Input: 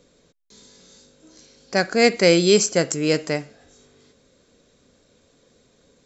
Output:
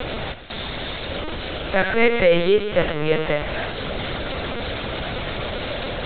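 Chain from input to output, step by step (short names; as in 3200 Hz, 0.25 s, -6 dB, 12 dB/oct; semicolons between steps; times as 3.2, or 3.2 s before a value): zero-crossing step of -17.5 dBFS; HPF 400 Hz 12 dB/oct; split-band echo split 1700 Hz, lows 0.117 s, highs 0.157 s, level -12 dB; LPC vocoder at 8 kHz pitch kept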